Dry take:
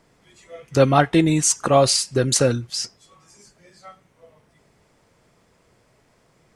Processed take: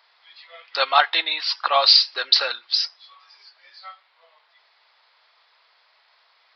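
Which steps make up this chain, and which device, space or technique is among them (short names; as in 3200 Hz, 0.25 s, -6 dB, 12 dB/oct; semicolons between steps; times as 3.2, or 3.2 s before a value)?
musical greeting card (downsampling 11025 Hz; HPF 840 Hz 24 dB/oct; bell 4000 Hz +9 dB 0.59 oct); gain +4 dB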